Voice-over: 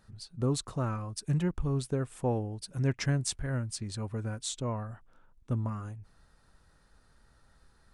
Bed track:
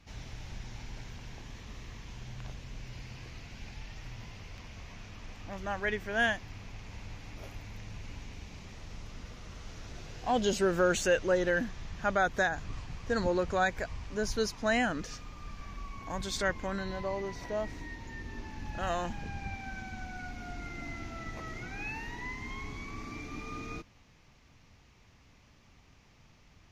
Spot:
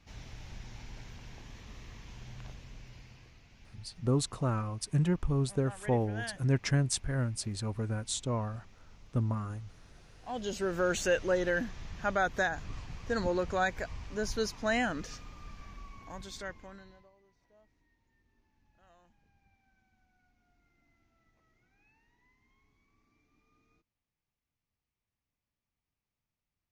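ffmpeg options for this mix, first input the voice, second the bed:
ffmpeg -i stem1.wav -i stem2.wav -filter_complex "[0:a]adelay=3650,volume=1dB[link_01];[1:a]volume=8dB,afade=type=out:start_time=2.4:duration=0.98:silence=0.334965,afade=type=in:start_time=10.21:duration=0.84:silence=0.281838,afade=type=out:start_time=15.06:duration=2.05:silence=0.0334965[link_02];[link_01][link_02]amix=inputs=2:normalize=0" out.wav

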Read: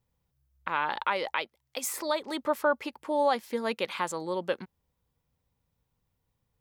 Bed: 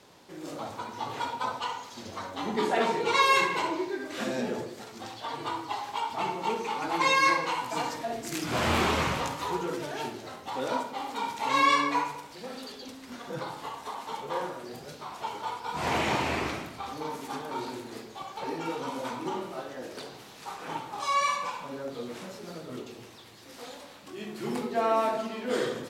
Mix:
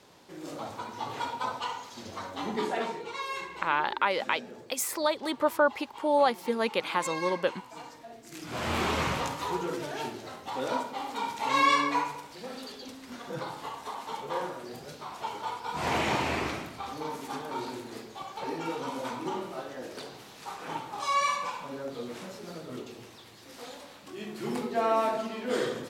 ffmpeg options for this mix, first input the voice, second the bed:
ffmpeg -i stem1.wav -i stem2.wav -filter_complex "[0:a]adelay=2950,volume=2dB[link_01];[1:a]volume=12dB,afade=type=out:start_time=2.44:duration=0.67:silence=0.237137,afade=type=in:start_time=8.25:duration=0.89:silence=0.223872[link_02];[link_01][link_02]amix=inputs=2:normalize=0" out.wav

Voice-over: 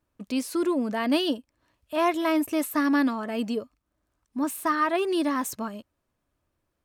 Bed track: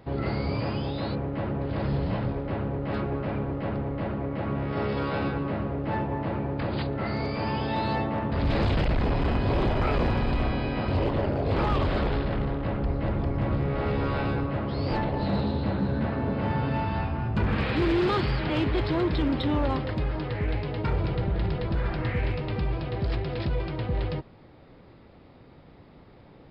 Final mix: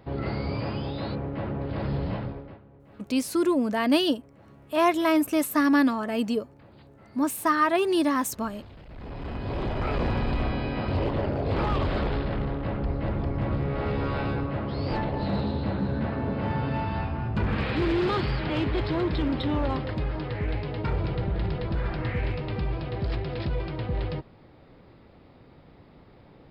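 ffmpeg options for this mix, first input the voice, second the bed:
ffmpeg -i stem1.wav -i stem2.wav -filter_complex "[0:a]adelay=2800,volume=2dB[link_01];[1:a]volume=20.5dB,afade=type=out:start_time=2.09:duration=0.51:silence=0.0841395,afade=type=in:start_time=8.87:duration=1.29:silence=0.0794328[link_02];[link_01][link_02]amix=inputs=2:normalize=0" out.wav

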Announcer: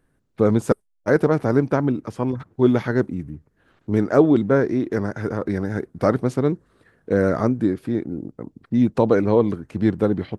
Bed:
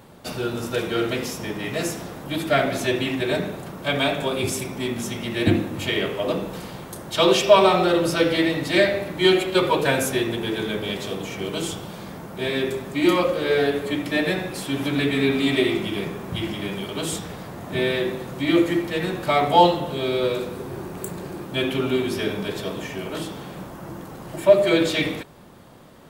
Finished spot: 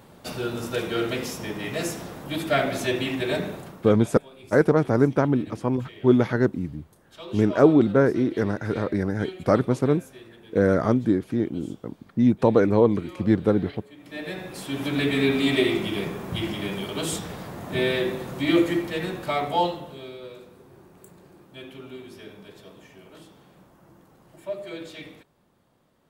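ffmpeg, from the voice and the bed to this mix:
ffmpeg -i stem1.wav -i stem2.wav -filter_complex "[0:a]adelay=3450,volume=-1dB[link_01];[1:a]volume=19.5dB,afade=type=out:start_time=3.53:duration=0.44:silence=0.0944061,afade=type=in:start_time=13.97:duration=1.16:silence=0.0794328,afade=type=out:start_time=18.48:duration=1.7:silence=0.141254[link_02];[link_01][link_02]amix=inputs=2:normalize=0" out.wav

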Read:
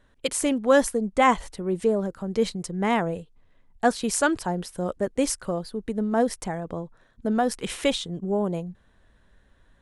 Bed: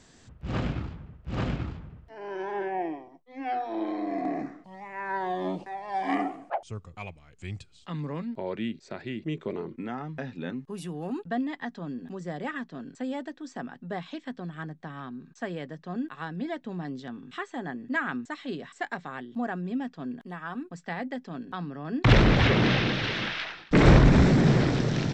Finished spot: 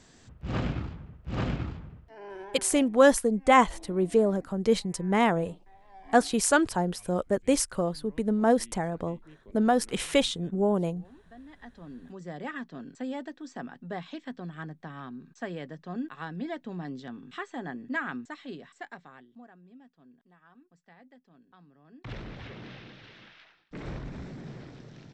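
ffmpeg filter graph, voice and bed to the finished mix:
ffmpeg -i stem1.wav -i stem2.wav -filter_complex "[0:a]adelay=2300,volume=0dB[link_01];[1:a]volume=18.5dB,afade=type=out:start_time=1.88:duration=0.83:silence=0.0944061,afade=type=in:start_time=11.38:duration=1.26:silence=0.112202,afade=type=out:start_time=17.81:duration=1.67:silence=0.1[link_02];[link_01][link_02]amix=inputs=2:normalize=0" out.wav

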